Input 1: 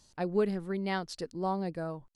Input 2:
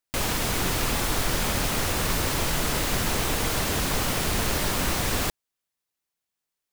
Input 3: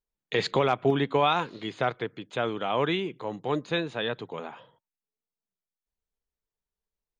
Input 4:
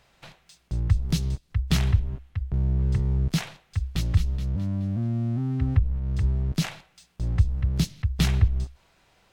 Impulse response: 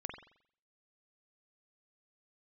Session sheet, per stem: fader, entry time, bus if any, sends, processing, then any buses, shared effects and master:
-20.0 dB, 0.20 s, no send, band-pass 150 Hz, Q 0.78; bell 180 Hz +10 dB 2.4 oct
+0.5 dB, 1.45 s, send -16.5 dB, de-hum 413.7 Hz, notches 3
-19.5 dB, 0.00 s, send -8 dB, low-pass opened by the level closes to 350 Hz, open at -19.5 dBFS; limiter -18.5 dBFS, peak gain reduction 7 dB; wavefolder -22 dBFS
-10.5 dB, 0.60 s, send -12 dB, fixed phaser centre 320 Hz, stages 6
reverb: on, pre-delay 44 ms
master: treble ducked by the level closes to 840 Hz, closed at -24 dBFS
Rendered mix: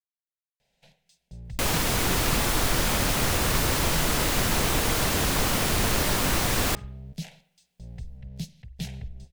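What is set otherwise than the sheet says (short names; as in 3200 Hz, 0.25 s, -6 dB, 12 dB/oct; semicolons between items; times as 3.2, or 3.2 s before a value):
stem 1: muted; stem 3: muted; master: missing treble ducked by the level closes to 840 Hz, closed at -24 dBFS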